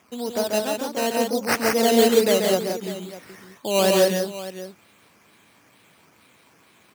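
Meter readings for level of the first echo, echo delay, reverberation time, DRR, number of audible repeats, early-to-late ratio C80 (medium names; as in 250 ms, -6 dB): -4.5 dB, 137 ms, no reverb, no reverb, 3, no reverb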